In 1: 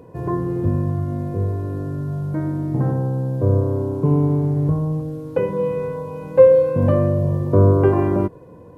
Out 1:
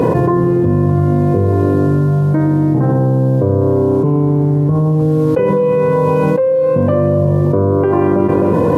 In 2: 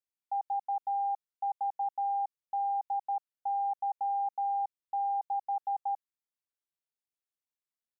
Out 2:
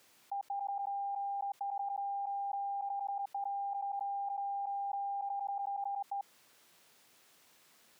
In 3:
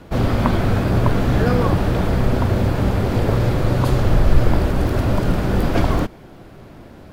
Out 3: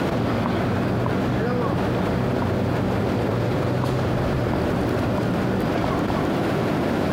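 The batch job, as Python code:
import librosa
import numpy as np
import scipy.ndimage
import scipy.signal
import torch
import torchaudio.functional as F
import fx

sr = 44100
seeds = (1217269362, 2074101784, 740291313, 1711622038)

y = scipy.signal.sosfilt(scipy.signal.butter(2, 130.0, 'highpass', fs=sr, output='sos'), x)
y = fx.high_shelf(y, sr, hz=6300.0, db=-7.0)
y = y + 10.0 ** (-19.5 / 20.0) * np.pad(y, (int(260 * sr / 1000.0), 0))[:len(y)]
y = fx.env_flatten(y, sr, amount_pct=100)
y = F.gain(torch.from_numpy(y), -6.5).numpy()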